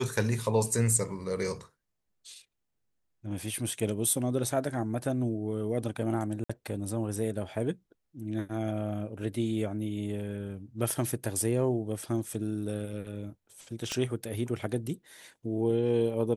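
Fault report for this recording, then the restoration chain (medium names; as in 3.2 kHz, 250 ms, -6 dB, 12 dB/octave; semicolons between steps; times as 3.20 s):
6.44–6.50 s: dropout 55 ms
13.92 s: pop -19 dBFS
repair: de-click; interpolate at 6.44 s, 55 ms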